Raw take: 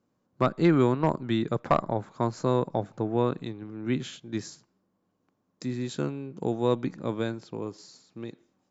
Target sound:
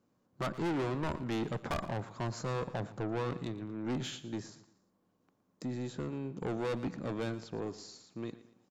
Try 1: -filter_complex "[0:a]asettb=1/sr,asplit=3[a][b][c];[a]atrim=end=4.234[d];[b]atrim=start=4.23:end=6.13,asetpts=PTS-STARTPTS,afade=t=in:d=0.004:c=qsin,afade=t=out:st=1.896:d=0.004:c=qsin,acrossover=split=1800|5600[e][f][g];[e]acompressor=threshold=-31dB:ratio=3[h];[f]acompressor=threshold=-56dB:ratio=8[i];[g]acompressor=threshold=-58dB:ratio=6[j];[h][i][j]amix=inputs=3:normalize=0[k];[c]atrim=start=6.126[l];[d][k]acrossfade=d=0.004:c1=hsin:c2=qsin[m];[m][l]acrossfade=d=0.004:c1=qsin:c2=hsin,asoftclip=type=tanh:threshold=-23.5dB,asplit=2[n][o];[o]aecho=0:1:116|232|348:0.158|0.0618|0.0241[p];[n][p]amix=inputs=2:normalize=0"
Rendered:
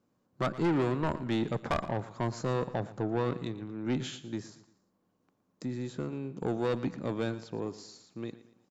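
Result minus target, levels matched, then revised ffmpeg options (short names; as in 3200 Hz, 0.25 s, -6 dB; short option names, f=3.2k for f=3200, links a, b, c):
soft clip: distortion -4 dB
-filter_complex "[0:a]asettb=1/sr,asplit=3[a][b][c];[a]atrim=end=4.234[d];[b]atrim=start=4.23:end=6.13,asetpts=PTS-STARTPTS,afade=t=in:d=0.004:c=qsin,afade=t=out:st=1.896:d=0.004:c=qsin,acrossover=split=1800|5600[e][f][g];[e]acompressor=threshold=-31dB:ratio=3[h];[f]acompressor=threshold=-56dB:ratio=8[i];[g]acompressor=threshold=-58dB:ratio=6[j];[h][i][j]amix=inputs=3:normalize=0[k];[c]atrim=start=6.126[l];[d][k]acrossfade=d=0.004:c1=hsin:c2=qsin[m];[m][l]acrossfade=d=0.004:c1=qsin:c2=hsin,asoftclip=type=tanh:threshold=-30.5dB,asplit=2[n][o];[o]aecho=0:1:116|232|348:0.158|0.0618|0.0241[p];[n][p]amix=inputs=2:normalize=0"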